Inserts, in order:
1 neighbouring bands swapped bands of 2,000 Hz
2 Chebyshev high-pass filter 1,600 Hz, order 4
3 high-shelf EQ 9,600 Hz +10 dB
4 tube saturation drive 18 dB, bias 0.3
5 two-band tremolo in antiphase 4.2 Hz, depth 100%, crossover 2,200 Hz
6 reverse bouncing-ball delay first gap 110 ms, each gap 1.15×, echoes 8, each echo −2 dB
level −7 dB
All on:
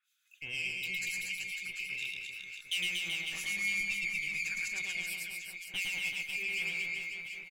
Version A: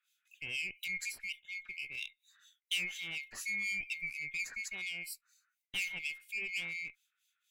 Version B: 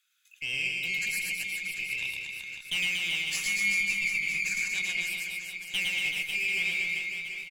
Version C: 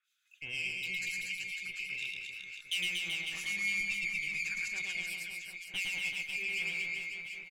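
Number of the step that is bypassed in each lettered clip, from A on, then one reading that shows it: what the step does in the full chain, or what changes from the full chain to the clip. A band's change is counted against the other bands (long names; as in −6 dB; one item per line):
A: 6, change in crest factor +3.0 dB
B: 5, change in integrated loudness +5.5 LU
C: 3, 8 kHz band −2.0 dB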